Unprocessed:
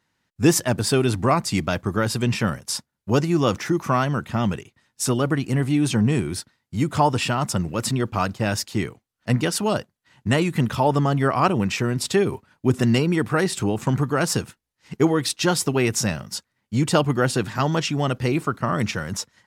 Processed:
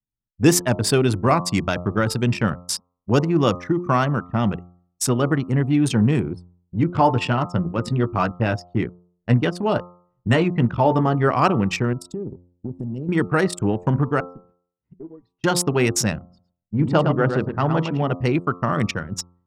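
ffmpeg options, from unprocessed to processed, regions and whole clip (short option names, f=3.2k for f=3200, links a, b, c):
-filter_complex "[0:a]asettb=1/sr,asplit=3[a][b][c];[a]atrim=end=6.334[d];[b]atrim=start=6.33:end=11.28,asetpts=PTS-STARTPTS,afade=t=in:d=0.004:c=qsin,afade=t=out:st=4.946:d=0.004:c=qsin,lowpass=f=3.6k:p=1,asplit=2[e][f];[f]adelay=17,volume=-8.5dB[g];[e][g]amix=inputs=2:normalize=0,atrim=end_sample=218295[h];[c]atrim=start=11.276[i];[d][h]acrossfade=d=0.004:c1=hsin:c2=qsin[j];[j][i]acrossfade=d=0.004:c1=qsin:c2=hsin,asettb=1/sr,asplit=3[k][l][m];[k]atrim=end=11.934[n];[l]atrim=start=11.93:end=13.09,asetpts=PTS-STARTPTS,afade=t=in:d=0.004:c=qsin,afade=t=out:st=1.156:d=0.004:c=qsin,equalizer=f=1.4k:w=0.56:g=-14.5,acompressor=threshold=-25dB:ratio=12:attack=3.2:release=140:knee=1:detection=peak[o];[m]atrim=start=13.086[p];[n][o]acrossfade=d=0.004:c1=hsin:c2=qsin[q];[q][p]acrossfade=d=0.004:c1=qsin:c2=hsin,asettb=1/sr,asplit=3[r][s][t];[r]atrim=end=14.204[u];[s]atrim=start=14.2:end=15.44,asetpts=PTS-STARTPTS,afade=t=in:d=0.004:c=qsin,afade=t=out:st=1.236:d=0.004:c=qsin,highpass=45,acompressor=threshold=-36dB:ratio=3:attack=3.2:release=140:knee=1:detection=peak,aemphasis=mode=reproduction:type=75kf[v];[t]atrim=start=15.436[w];[u][v]acrossfade=d=0.004:c1=hsin:c2=qsin[x];[x][w]acrossfade=d=0.004:c1=qsin:c2=hsin,asettb=1/sr,asplit=3[y][z][aa];[y]atrim=end=16.194[ab];[z]atrim=start=16.19:end=18.13,asetpts=PTS-STARTPTS,afade=t=in:d=0.004:c=qsin,afade=t=out:st=1.936:d=0.004:c=qsin,lowpass=f=1.7k:p=1,bandreject=f=60:t=h:w=6,bandreject=f=120:t=h:w=6,bandreject=f=180:t=h:w=6,bandreject=f=240:t=h:w=6,bandreject=f=300:t=h:w=6,bandreject=f=360:t=h:w=6,bandreject=f=420:t=h:w=6,bandreject=f=480:t=h:w=6,aecho=1:1:110:0.501,atrim=end_sample=85554[ac];[aa]atrim=start=18.126[ad];[ab][ac]acrossfade=d=0.004:c1=hsin:c2=qsin[ae];[ae][ad]acrossfade=d=0.004:c1=qsin:c2=hsin,anlmdn=251,bandreject=f=88.41:t=h:w=4,bandreject=f=176.82:t=h:w=4,bandreject=f=265.23:t=h:w=4,bandreject=f=353.64:t=h:w=4,bandreject=f=442.05:t=h:w=4,bandreject=f=530.46:t=h:w=4,bandreject=f=618.87:t=h:w=4,bandreject=f=707.28:t=h:w=4,bandreject=f=795.69:t=h:w=4,bandreject=f=884.1:t=h:w=4,bandreject=f=972.51:t=h:w=4,bandreject=f=1.06092k:t=h:w=4,bandreject=f=1.14933k:t=h:w=4,bandreject=f=1.23774k:t=h:w=4,bandreject=f=1.32615k:t=h:w=4,volume=2dB"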